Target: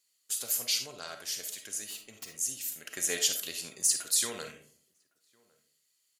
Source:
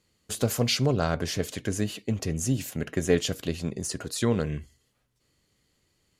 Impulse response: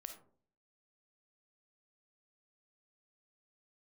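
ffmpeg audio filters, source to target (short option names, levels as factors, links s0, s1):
-filter_complex "[0:a]aderivative,asettb=1/sr,asplit=3[s0][s1][s2];[s0]atrim=end=1.794[s3];[s1]atrim=start=1.79:end=2.29,asetpts=PTS-STARTPTS,afade=t=in:d=0.004:c=qsin,afade=t=out:st=0.496:d=0.004:c=qsin,aeval=exprs='0.0168*(abs(mod(val(0)/0.0168+3,4)-2)-1)':c=same[s4];[s2]atrim=start=2.286[s5];[s3][s4]acrossfade=d=0.004:c1=hsin:c2=qsin[s6];[s6][s5]acrossfade=d=0.004:c1=qsin:c2=hsin,asettb=1/sr,asplit=3[s7][s8][s9];[s7]atrim=end=2.834[s10];[s8]atrim=start=2.83:end=4.52,asetpts=PTS-STARTPTS,afade=t=in:d=0.004:c=qsin,afade=t=out:st=1.686:d=0.004:c=qsin,acontrast=71[s11];[s9]atrim=start=4.516[s12];[s10][s11]acrossfade=d=0.004:c1=hsin:c2=qsin[s13];[s13][s12]acrossfade=d=0.004:c1=qsin:c2=hsin,asplit=2[s14][s15];[s15]adelay=1108,volume=0.0398,highshelf=f=4000:g=-24.9[s16];[s14][s16]amix=inputs=2:normalize=0[s17];[1:a]atrim=start_sample=2205[s18];[s17][s18]afir=irnorm=-1:irlink=0,volume=2.24"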